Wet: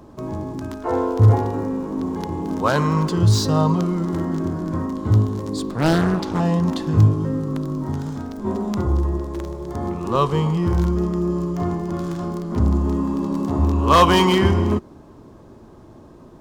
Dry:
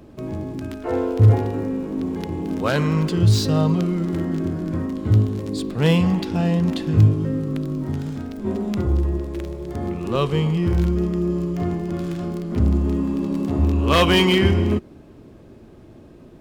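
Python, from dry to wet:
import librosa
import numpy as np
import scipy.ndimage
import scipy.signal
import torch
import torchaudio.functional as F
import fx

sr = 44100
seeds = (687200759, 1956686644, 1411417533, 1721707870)

y = fx.graphic_eq_15(x, sr, hz=(1000, 2500, 6300), db=(10, -6, 4))
y = fx.doppler_dist(y, sr, depth_ms=0.88, at=(5.76, 6.4))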